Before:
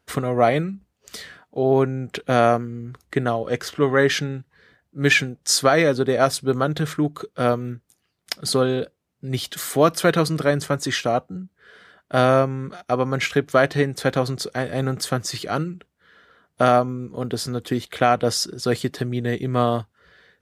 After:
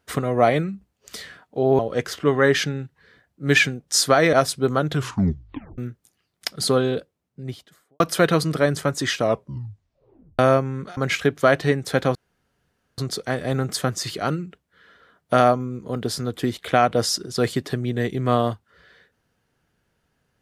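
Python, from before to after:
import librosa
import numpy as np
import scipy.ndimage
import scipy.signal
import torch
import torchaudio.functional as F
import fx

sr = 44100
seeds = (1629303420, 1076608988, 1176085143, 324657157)

y = fx.studio_fade_out(x, sr, start_s=8.8, length_s=1.05)
y = fx.edit(y, sr, fx.cut(start_s=1.79, length_s=1.55),
    fx.cut(start_s=5.88, length_s=0.3),
    fx.tape_stop(start_s=6.76, length_s=0.87),
    fx.tape_stop(start_s=11.05, length_s=1.19),
    fx.cut(start_s=12.82, length_s=0.26),
    fx.insert_room_tone(at_s=14.26, length_s=0.83), tone=tone)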